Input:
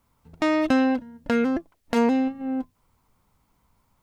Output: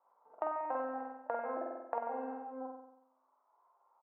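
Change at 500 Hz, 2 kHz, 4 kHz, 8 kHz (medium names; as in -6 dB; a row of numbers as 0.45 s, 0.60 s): -12.5 dB, -19.0 dB, under -40 dB, no reading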